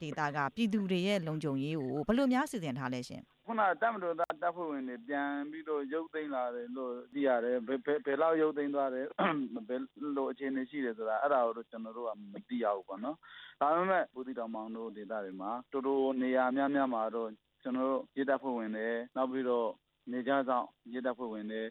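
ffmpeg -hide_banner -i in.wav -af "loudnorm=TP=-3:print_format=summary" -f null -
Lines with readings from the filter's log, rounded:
Input Integrated:    -34.6 LUFS
Input True Peak:     -16.5 dBTP
Input LRA:             2.2 LU
Input Threshold:     -44.8 LUFS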